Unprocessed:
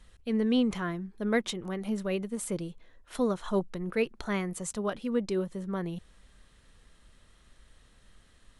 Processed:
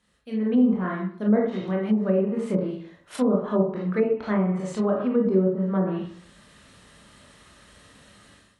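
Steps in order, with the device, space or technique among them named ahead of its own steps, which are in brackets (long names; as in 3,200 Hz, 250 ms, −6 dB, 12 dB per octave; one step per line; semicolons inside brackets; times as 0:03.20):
far laptop microphone (convolution reverb RT60 0.55 s, pre-delay 21 ms, DRR −2.5 dB; high-pass filter 110 Hz 12 dB per octave; automatic gain control gain up to 16 dB)
treble cut that deepens with the level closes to 820 Hz, closed at −10 dBFS
level −8 dB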